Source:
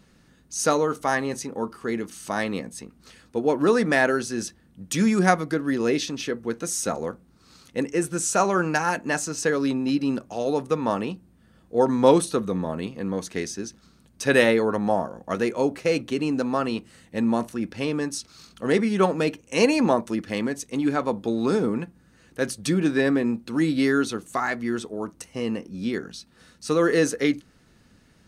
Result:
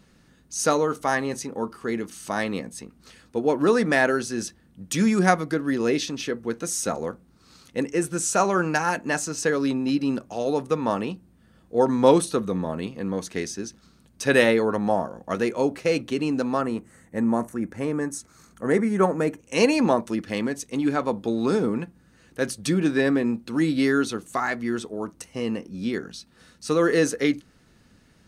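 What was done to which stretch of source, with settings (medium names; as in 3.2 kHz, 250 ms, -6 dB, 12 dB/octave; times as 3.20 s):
16.61–19.40 s: high-order bell 3.7 kHz -13 dB 1.3 oct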